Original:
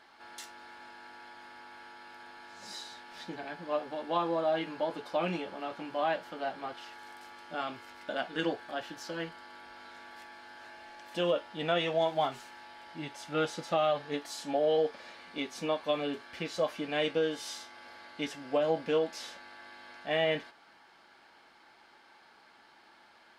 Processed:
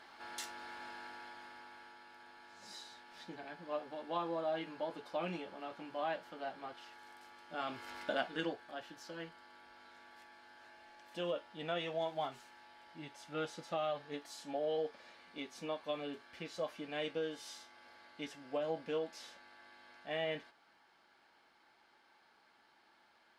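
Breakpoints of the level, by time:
0:00.96 +1.5 dB
0:02.07 −7.5 dB
0:07.48 −7.5 dB
0:07.96 +3 dB
0:08.57 −9 dB

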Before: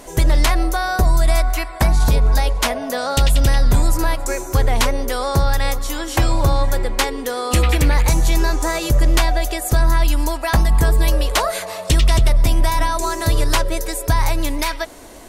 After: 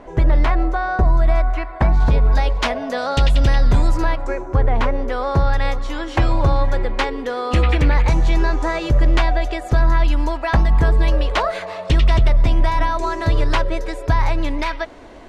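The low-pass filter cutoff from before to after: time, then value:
0:01.79 1,800 Hz
0:02.58 3,900 Hz
0:03.98 3,900 Hz
0:04.46 1,400 Hz
0:05.63 3,000 Hz

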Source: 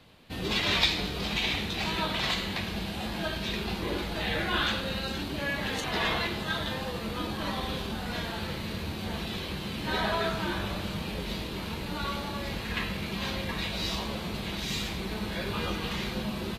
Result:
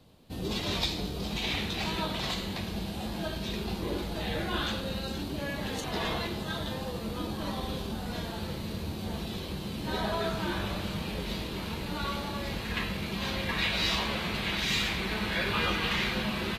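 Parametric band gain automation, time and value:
parametric band 2,000 Hz 1.9 octaves
0:01.31 −11.5 dB
0:01.59 0 dB
0:02.19 −7.5 dB
0:10.10 −7.5 dB
0:10.59 −1 dB
0:13.24 −1 dB
0:13.68 +8 dB

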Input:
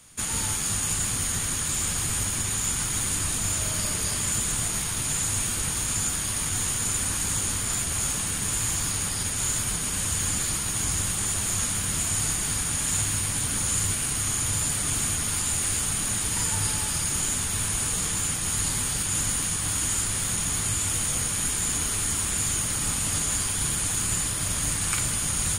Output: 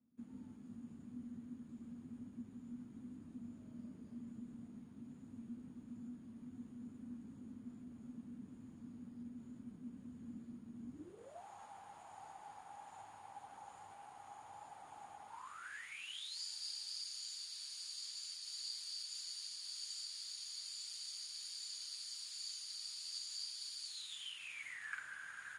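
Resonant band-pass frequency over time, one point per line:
resonant band-pass, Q 16
0:10.90 240 Hz
0:11.45 810 Hz
0:15.27 810 Hz
0:16.39 4,600 Hz
0:23.85 4,600 Hz
0:24.97 1,600 Hz

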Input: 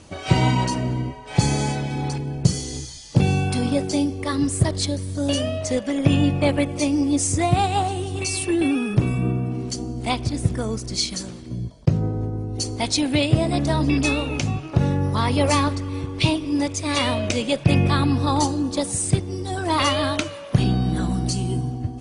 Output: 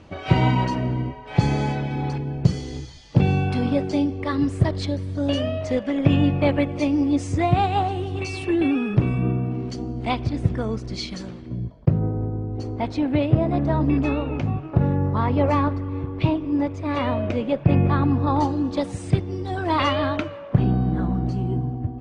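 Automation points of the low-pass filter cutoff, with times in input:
0:11.29 2,900 Hz
0:12.05 1,500 Hz
0:18.22 1,500 Hz
0:18.64 2,900 Hz
0:19.73 2,900 Hz
0:20.65 1,400 Hz

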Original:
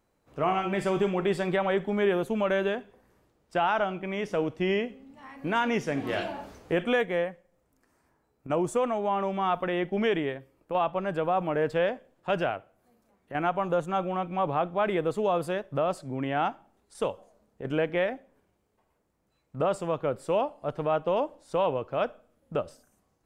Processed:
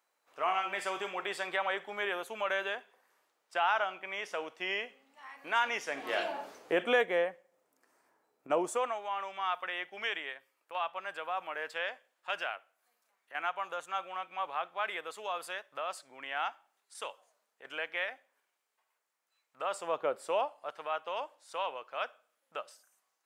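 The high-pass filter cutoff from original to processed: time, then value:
0:05.80 920 Hz
0:06.36 430 Hz
0:08.57 430 Hz
0:09.06 1,300 Hz
0:19.59 1,300 Hz
0:20.02 510 Hz
0:20.82 1,200 Hz

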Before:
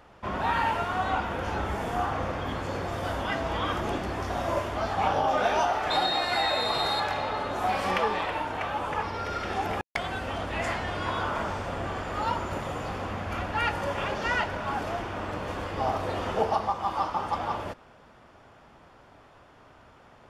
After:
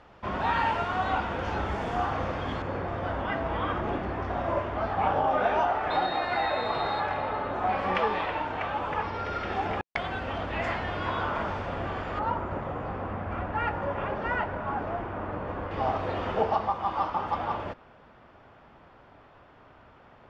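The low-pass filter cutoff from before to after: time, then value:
5,200 Hz
from 0:02.62 2,200 Hz
from 0:07.95 3,500 Hz
from 0:12.19 1,600 Hz
from 0:15.71 3,300 Hz

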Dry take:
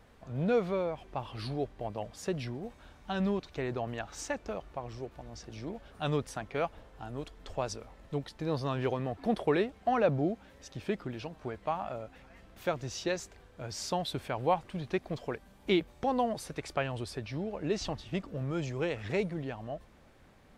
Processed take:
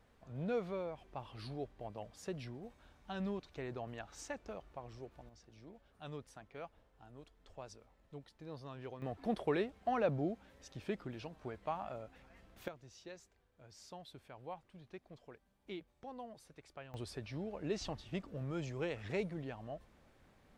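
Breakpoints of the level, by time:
−9 dB
from 0:05.29 −16 dB
from 0:09.02 −6.5 dB
from 0:12.68 −19 dB
from 0:16.94 −6.5 dB

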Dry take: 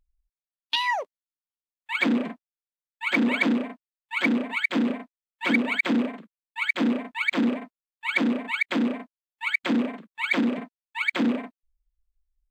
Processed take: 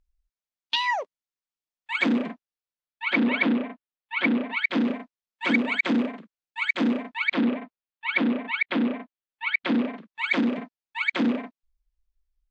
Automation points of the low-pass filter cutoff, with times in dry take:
low-pass filter 24 dB per octave
0:02.08 7,400 Hz
0:03.46 3,900 Hz
0:04.33 3,900 Hz
0:05.00 6,900 Hz
0:06.99 6,900 Hz
0:07.48 4,000 Hz
0:09.45 4,000 Hz
0:10.21 6,300 Hz

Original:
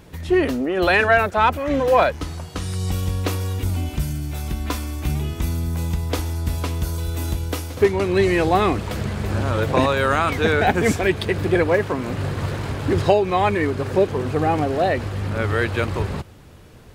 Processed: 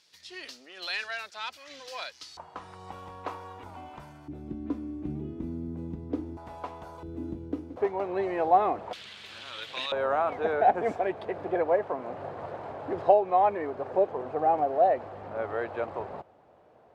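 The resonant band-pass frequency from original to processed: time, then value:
resonant band-pass, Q 2.8
4,800 Hz
from 0:02.37 920 Hz
from 0:04.28 290 Hz
from 0:06.37 810 Hz
from 0:07.03 290 Hz
from 0:07.76 730 Hz
from 0:08.93 3,400 Hz
from 0:09.92 700 Hz

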